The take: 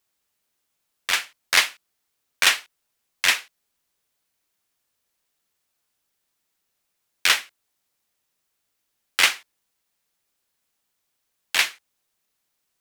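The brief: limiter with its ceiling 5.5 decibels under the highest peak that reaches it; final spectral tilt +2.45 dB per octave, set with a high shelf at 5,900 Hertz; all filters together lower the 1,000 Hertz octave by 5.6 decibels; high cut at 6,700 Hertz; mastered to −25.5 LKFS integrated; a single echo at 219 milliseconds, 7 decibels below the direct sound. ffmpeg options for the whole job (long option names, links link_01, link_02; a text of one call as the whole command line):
ffmpeg -i in.wav -af "lowpass=6700,equalizer=frequency=1000:width_type=o:gain=-8,highshelf=frequency=5900:gain=4.5,alimiter=limit=-8dB:level=0:latency=1,aecho=1:1:219:0.447,volume=-0.5dB" out.wav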